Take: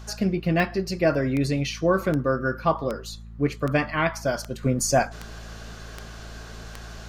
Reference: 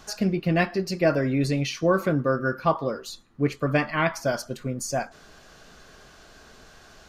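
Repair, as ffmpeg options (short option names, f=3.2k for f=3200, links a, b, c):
-af "adeclick=t=4,bandreject=f=55.7:t=h:w=4,bandreject=f=111.4:t=h:w=4,bandreject=f=167.1:t=h:w=4,bandreject=f=222.8:t=h:w=4,asetnsamples=n=441:p=0,asendcmd='4.63 volume volume -7dB',volume=0dB"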